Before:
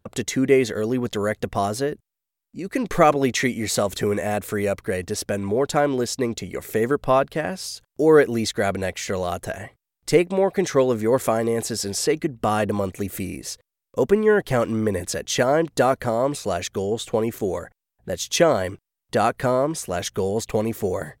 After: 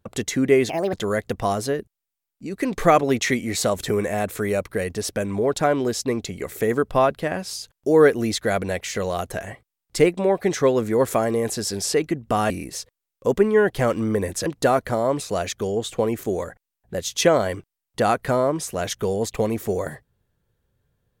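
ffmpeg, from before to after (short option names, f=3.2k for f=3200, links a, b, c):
-filter_complex "[0:a]asplit=5[a][b][c][d][e];[a]atrim=end=0.694[f];[b]atrim=start=0.69:end=1.06,asetpts=PTS-STARTPTS,asetrate=67914,aresample=44100,atrim=end_sample=10595,asetpts=PTS-STARTPTS[g];[c]atrim=start=1.056:end=12.632[h];[d]atrim=start=13.218:end=15.182[i];[e]atrim=start=15.608[j];[f][g]acrossfade=d=0.004:c1=hsin:c2=hsin[k];[k][h]acrossfade=d=0.004:c1=hsin:c2=hsin[l];[l][i]acrossfade=d=0.004:c1=hsin:c2=hsin[m];[m][j]acrossfade=d=0.004:c1=hsin:c2=hsin"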